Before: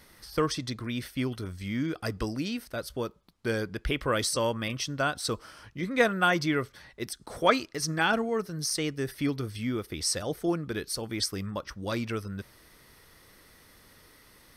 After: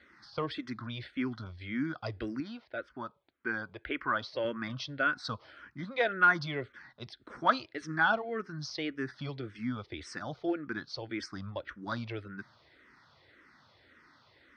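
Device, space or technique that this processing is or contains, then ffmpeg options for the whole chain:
barber-pole phaser into a guitar amplifier: -filter_complex "[0:a]asplit=2[s0][s1];[s1]afreqshift=-1.8[s2];[s0][s2]amix=inputs=2:normalize=1,asoftclip=type=tanh:threshold=0.211,highpass=110,equalizer=f=180:t=q:w=4:g=-7,equalizer=f=450:t=q:w=4:g=-7,equalizer=f=1500:t=q:w=4:g=5,equalizer=f=2800:t=q:w=4:g=-5,lowpass=f=4200:w=0.5412,lowpass=f=4200:w=1.3066,asettb=1/sr,asplit=3[s3][s4][s5];[s3]atrim=end=2.404[s6];[s4]atrim=start=2.4:end=4.45,asetpts=PTS-STARTPTS,afade=t=in:d=0.004:c=qsin,afade=t=out:st=2.046:d=0.004:c=qsin,bass=f=250:g=-8,treble=f=4000:g=-13[s7];[s5]atrim=start=4.446[s8];[s6][s7]acrossfade=d=0.004:c1=hsin:c2=qsin[s9];[s9][s8]acrossfade=d=0.004:c1=qsin:c2=hsin"

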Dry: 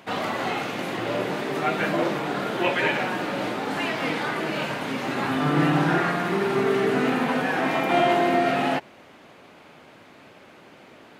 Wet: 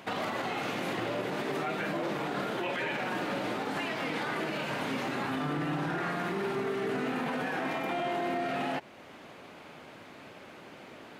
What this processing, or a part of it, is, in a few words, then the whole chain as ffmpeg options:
stacked limiters: -af "alimiter=limit=0.158:level=0:latency=1:release=20,alimiter=limit=0.0944:level=0:latency=1:release=372,alimiter=level_in=1.06:limit=0.0631:level=0:latency=1:release=57,volume=0.944"

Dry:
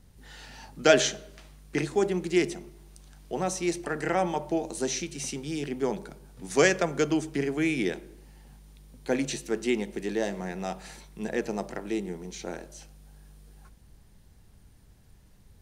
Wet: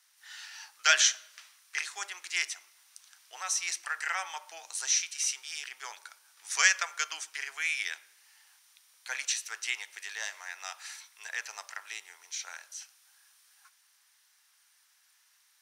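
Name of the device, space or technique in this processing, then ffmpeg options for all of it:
headphones lying on a table: -af "highpass=f=1200:w=0.5412,highpass=f=1200:w=1.3066,equalizer=f=5700:t=o:w=0.24:g=5.5,volume=1.33"

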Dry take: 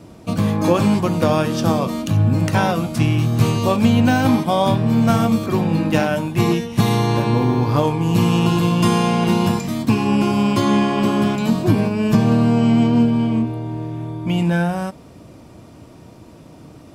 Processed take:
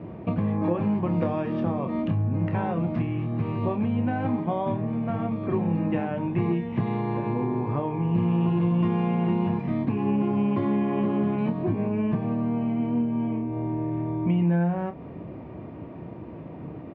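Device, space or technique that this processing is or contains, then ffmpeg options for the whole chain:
bass amplifier: -filter_complex "[0:a]acompressor=threshold=0.0447:ratio=6,highpass=62,equalizer=f=170:t=q:w=4:g=3,equalizer=f=380:t=q:w=4:g=3,equalizer=f=1400:t=q:w=4:g=-7,lowpass=f=2200:w=0.5412,lowpass=f=2200:w=1.3066,asettb=1/sr,asplit=3[s0][s1][s2];[s0]atrim=end=1.094[s3];[s1]atrim=start=1.09:end=1.54,asetpts=PTS-STARTPTS,afade=t=in:d=0.004:c=qsin,afade=t=out:st=0.446:d=0.004:c=qsin,equalizer=f=5900:w=1.2:g=8.5[s4];[s2]atrim=start=1.536[s5];[s3][s4]acrossfade=d=0.004:c1=hsin:c2=qsin[s6];[s6][s5]acrossfade=d=0.004:c1=qsin:c2=hsin,asplit=2[s7][s8];[s8]adelay=29,volume=0.355[s9];[s7][s9]amix=inputs=2:normalize=0,volume=1.26"

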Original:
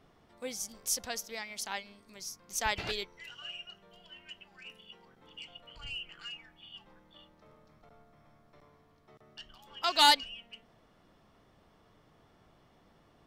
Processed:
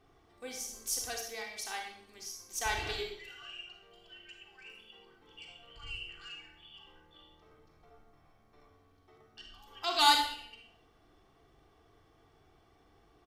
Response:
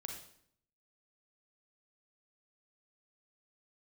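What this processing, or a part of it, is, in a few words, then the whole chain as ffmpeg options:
microphone above a desk: -filter_complex "[0:a]aecho=1:1:2.6:0.61[s0];[1:a]atrim=start_sample=2205[s1];[s0][s1]afir=irnorm=-1:irlink=0"

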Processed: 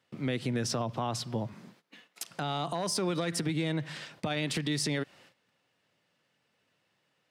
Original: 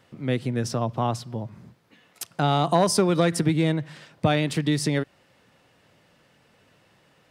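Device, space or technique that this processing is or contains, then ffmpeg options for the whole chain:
broadcast voice chain: -filter_complex "[0:a]agate=range=0.141:threshold=0.00158:ratio=16:detection=peak,asettb=1/sr,asplit=3[s0][s1][s2];[s0]atrim=end=1.534[s3];[s1]atrim=start=1.53:end=2.29,asetpts=PTS-STARTPTS,afade=t=in:d=0.004:c=qsin,afade=t=out:st=0.756:d=0.004:c=qsin,highpass=f=170:w=0.5412,highpass=f=170:w=1.3066[s4];[s2]atrim=start=2.286[s5];[s3][s4]acrossfade=d=0.004:c1=hsin:c2=qsin[s6];[s6][s5]acrossfade=d=0.004:c1=qsin:c2=hsin,highpass=110,deesser=0.45,acompressor=threshold=0.0501:ratio=4,equalizer=f=3900:t=o:w=2.9:g=5.5,alimiter=limit=0.0794:level=0:latency=1:release=44"

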